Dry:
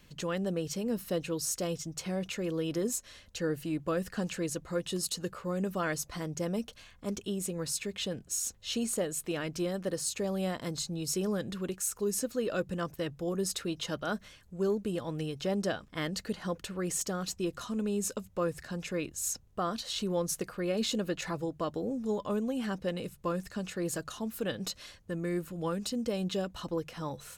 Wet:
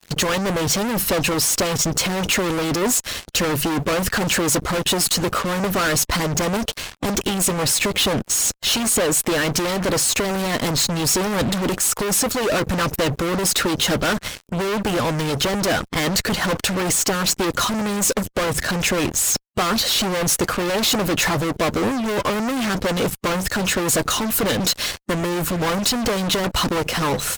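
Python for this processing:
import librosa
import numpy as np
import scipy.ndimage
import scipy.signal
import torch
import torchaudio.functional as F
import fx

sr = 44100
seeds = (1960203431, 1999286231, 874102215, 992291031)

y = fx.fuzz(x, sr, gain_db=48.0, gate_db=-53.0)
y = fx.hpss(y, sr, part='harmonic', gain_db=-6)
y = y * 10.0 ** (-2.5 / 20.0)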